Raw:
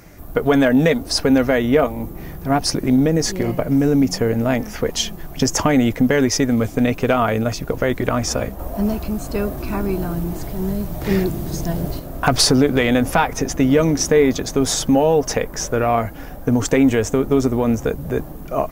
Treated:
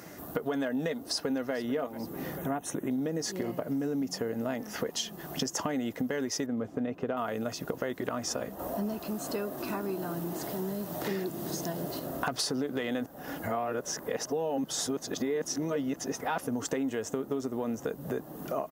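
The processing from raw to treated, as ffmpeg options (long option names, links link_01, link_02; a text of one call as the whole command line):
ffmpeg -i in.wav -filter_complex "[0:a]asplit=2[link_01][link_02];[link_02]afade=type=in:start_time=1.05:duration=0.01,afade=type=out:start_time=1.53:duration=0.01,aecho=0:1:440|880|1320:0.141254|0.0494388|0.0173036[link_03];[link_01][link_03]amix=inputs=2:normalize=0,asettb=1/sr,asplit=3[link_04][link_05][link_06];[link_04]atrim=end=2.384[link_07];[link_05]atrim=start=2.38:end=2.91,asetpts=PTS-STARTPTS,afade=type=in:duration=0.004:curve=qsin,afade=type=out:start_time=0.526:duration=0.004:curve=qsin,asuperstop=centerf=4800:order=4:qfactor=1.8[link_08];[link_06]atrim=start=2.906[link_09];[link_07][link_08]acrossfade=duration=0.004:curve1=hsin:curve2=qsin[link_10];[link_10][link_09]acrossfade=duration=0.004:curve1=qsin:curve2=hsin,asettb=1/sr,asplit=3[link_11][link_12][link_13];[link_11]atrim=end=6.464[link_14];[link_12]atrim=start=6.46:end=7.17,asetpts=PTS-STARTPTS,afade=type=in:duration=0.004:curve=qsin,afade=type=out:start_time=0.706:duration=0.004:curve=qsin,lowpass=frequency=1100:poles=1[link_15];[link_13]atrim=start=7.166[link_16];[link_14][link_15]acrossfade=duration=0.004:curve1=hsin:curve2=qsin[link_17];[link_17][link_16]acrossfade=duration=0.004:curve1=qsin:curve2=hsin,asettb=1/sr,asplit=3[link_18][link_19][link_20];[link_18]atrim=end=8.994[link_21];[link_19]atrim=start=8.99:end=12.01,asetpts=PTS-STARTPTS,afade=type=in:duration=0.004:curve=qsin,afade=type=out:start_time=3.016:duration=0.004:curve=qsin,lowshelf=frequency=140:gain=-9[link_22];[link_20]atrim=start=12.006[link_23];[link_21][link_22]acrossfade=duration=0.004:curve1=hsin:curve2=qsin[link_24];[link_24][link_23]acrossfade=duration=0.004:curve1=qsin:curve2=hsin,asplit=3[link_25][link_26][link_27];[link_25]atrim=end=13.062[link_28];[link_26]atrim=start=13.058:end=16.472,asetpts=PTS-STARTPTS,areverse[link_29];[link_27]atrim=start=16.468[link_30];[link_28][link_29]acrossfade=duration=0.004:curve1=hsin:curve2=hsin[link_31];[link_31][link_30]acrossfade=duration=0.004:curve1=hsin:curve2=hsin,highpass=190,bandreject=frequency=2300:width=7.1,acompressor=threshold=-32dB:ratio=4" out.wav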